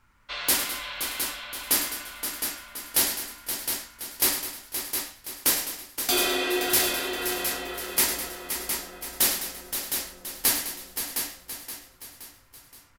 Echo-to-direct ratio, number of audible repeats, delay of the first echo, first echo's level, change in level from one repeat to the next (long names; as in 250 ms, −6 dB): −2.5 dB, 15, 103 ms, −10.5 dB, repeats not evenly spaced